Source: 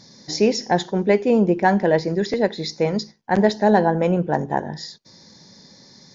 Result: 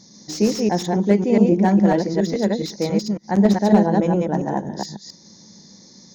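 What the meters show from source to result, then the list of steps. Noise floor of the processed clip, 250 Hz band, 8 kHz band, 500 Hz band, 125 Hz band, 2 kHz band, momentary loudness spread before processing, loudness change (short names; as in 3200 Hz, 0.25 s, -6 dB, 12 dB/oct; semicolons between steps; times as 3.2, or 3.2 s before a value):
-48 dBFS, +4.5 dB, n/a, -1.5 dB, +3.0 dB, -6.0 dB, 10 LU, +1.5 dB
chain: reverse delay 0.138 s, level -2 dB; thirty-one-band EQ 200 Hz +9 dB, 315 Hz +6 dB, 1600 Hz -5 dB, 2500 Hz -3 dB, 6300 Hz +11 dB; slew limiter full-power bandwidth 320 Hz; gain -4.5 dB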